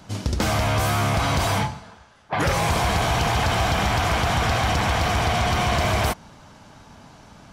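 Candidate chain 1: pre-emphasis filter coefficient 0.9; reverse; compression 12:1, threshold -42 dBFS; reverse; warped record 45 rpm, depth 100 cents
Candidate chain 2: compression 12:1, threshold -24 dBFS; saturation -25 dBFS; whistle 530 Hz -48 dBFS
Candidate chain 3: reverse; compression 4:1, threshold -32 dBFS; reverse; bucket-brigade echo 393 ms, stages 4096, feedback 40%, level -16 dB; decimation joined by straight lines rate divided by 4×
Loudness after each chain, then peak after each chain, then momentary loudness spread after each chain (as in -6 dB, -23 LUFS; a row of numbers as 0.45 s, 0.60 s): -43.5 LUFS, -30.5 LUFS, -33.0 LUFS; -29.0 dBFS, -24.5 dBFS, -21.5 dBFS; 14 LU, 16 LU, 14 LU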